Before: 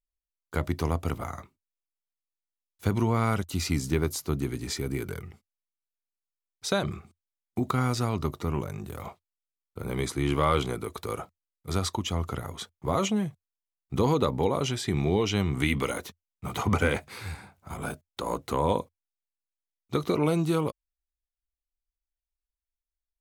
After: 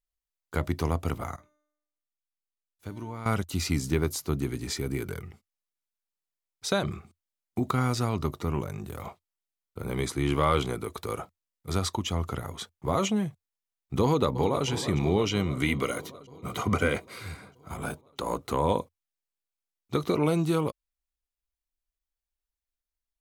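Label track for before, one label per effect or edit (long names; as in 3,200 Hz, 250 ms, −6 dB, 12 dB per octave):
1.360000	3.260000	tuned comb filter 300 Hz, decay 0.79 s, mix 80%
14.030000	14.660000	delay throw 320 ms, feedback 75%, level −11.5 dB
15.290000	17.710000	notch comb filter 870 Hz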